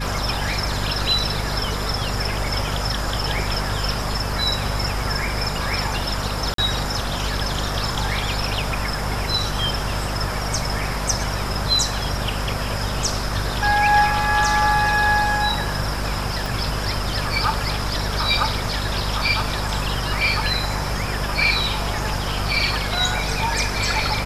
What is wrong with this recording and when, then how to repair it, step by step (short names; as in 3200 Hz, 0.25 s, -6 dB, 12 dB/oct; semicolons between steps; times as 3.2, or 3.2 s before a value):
hum 50 Hz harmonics 5 -27 dBFS
6.54–6.58 gap 43 ms
16.46 pop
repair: de-click; de-hum 50 Hz, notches 5; interpolate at 6.54, 43 ms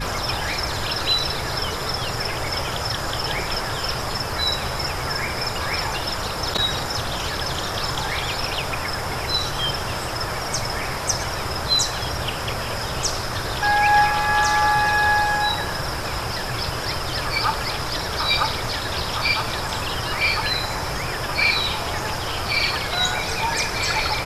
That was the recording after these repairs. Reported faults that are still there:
16.46 pop